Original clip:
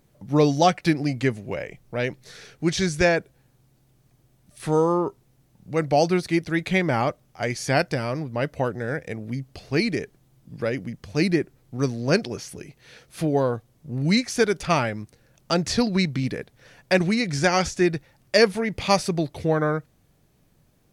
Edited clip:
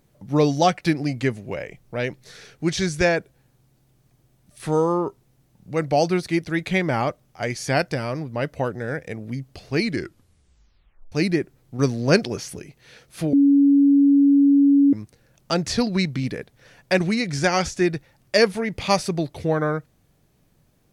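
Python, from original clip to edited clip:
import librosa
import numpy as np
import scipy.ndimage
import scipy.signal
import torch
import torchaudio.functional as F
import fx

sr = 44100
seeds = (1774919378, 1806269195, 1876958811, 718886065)

y = fx.edit(x, sr, fx.tape_stop(start_s=9.84, length_s=1.28),
    fx.clip_gain(start_s=11.79, length_s=0.8, db=3.5),
    fx.bleep(start_s=13.33, length_s=1.6, hz=281.0, db=-11.5), tone=tone)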